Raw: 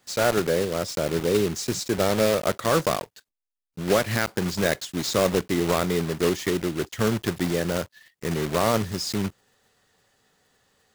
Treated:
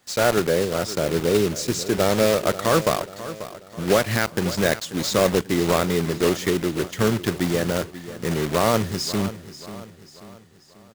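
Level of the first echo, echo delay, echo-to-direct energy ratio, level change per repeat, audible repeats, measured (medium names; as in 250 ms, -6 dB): -14.5 dB, 538 ms, -13.5 dB, -6.5 dB, 4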